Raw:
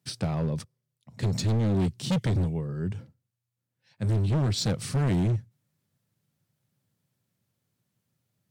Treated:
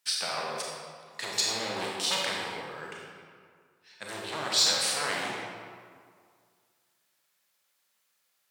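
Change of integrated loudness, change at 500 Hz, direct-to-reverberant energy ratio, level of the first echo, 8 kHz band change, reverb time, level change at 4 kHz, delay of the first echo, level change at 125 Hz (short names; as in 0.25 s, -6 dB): -1.0 dB, -2.5 dB, -2.5 dB, none, +9.5 dB, 2.0 s, +10.0 dB, none, -26.0 dB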